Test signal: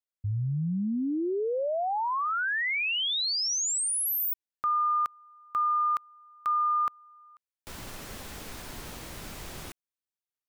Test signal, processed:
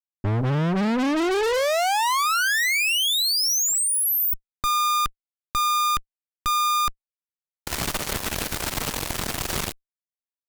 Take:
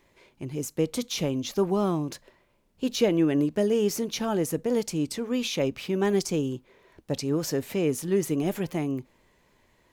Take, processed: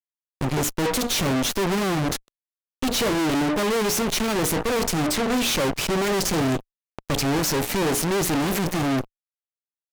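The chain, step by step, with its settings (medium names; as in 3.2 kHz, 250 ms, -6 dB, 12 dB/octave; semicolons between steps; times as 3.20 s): hum notches 60/120/180/240/300/360/420/480 Hz; fuzz box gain 38 dB, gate -43 dBFS; Chebyshev shaper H 2 -13 dB, 6 -12 dB, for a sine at -9.5 dBFS; trim -7.5 dB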